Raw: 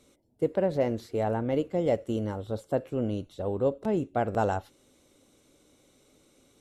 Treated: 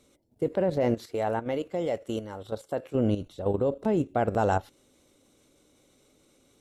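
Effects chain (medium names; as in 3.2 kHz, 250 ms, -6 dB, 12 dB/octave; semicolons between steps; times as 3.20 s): level held to a coarse grid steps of 10 dB; 0.94–2.95 s: bass shelf 390 Hz -10 dB; trim +6.5 dB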